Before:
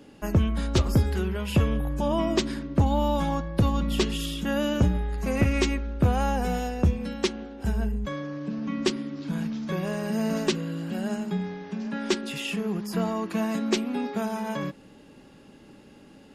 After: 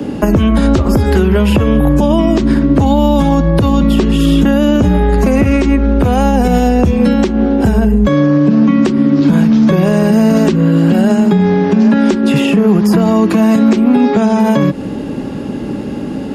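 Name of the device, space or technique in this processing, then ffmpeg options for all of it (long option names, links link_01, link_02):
mastering chain: -filter_complex "[0:a]highpass=43,equalizer=frequency=250:width_type=o:width=0.77:gain=2.5,acrossover=split=110|250|710|2100[link_01][link_02][link_03][link_04][link_05];[link_01]acompressor=threshold=-41dB:ratio=4[link_06];[link_02]acompressor=threshold=-40dB:ratio=4[link_07];[link_03]acompressor=threshold=-37dB:ratio=4[link_08];[link_04]acompressor=threshold=-43dB:ratio=4[link_09];[link_05]acompressor=threshold=-43dB:ratio=4[link_10];[link_06][link_07][link_08][link_09][link_10]amix=inputs=5:normalize=0,acompressor=threshold=-36dB:ratio=2.5,tiltshelf=frequency=1100:gain=5.5,alimiter=level_in=25.5dB:limit=-1dB:release=50:level=0:latency=1,asettb=1/sr,asplit=3[link_11][link_12][link_13];[link_11]atrim=end=13.964[link_14];[link_12]atrim=start=13.96:end=14.4,asetpts=PTS-STARTPTS,afade=type=in:duration=0.004:curve=qsin,afade=type=out:start_time=0.436:duration=0.004:curve=qsin,lowpass=frequency=7900:width=0.5412,lowpass=frequency=7900:width=1.3066[link_15];[link_13]atrim=start=14.396[link_16];[link_14][link_15]acrossfade=duration=0.004:curve1=hsin:curve2=qsin[link_17];[link_17][link_16]acrossfade=duration=0.004:curve1=qsin:curve2=hsin,volume=-1dB"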